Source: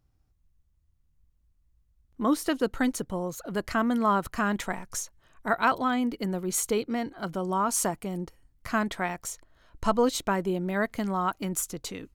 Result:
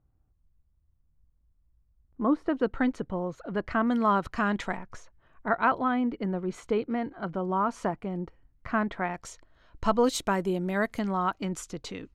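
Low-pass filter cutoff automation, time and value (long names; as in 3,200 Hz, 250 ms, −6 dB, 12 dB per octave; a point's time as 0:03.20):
1,300 Hz
from 0:02.57 2,400 Hz
from 0:03.87 4,600 Hz
from 0:04.77 2,100 Hz
from 0:09.14 4,800 Hz
from 0:10.04 12,000 Hz
from 0:10.99 4,700 Hz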